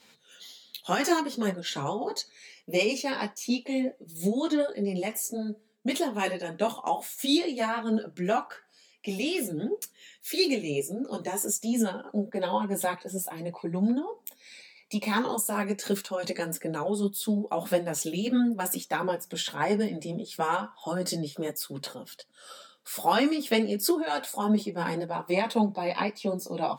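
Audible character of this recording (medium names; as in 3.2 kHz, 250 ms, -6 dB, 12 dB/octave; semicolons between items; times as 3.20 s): tremolo triangle 2.9 Hz, depth 45%; a shimmering, thickened sound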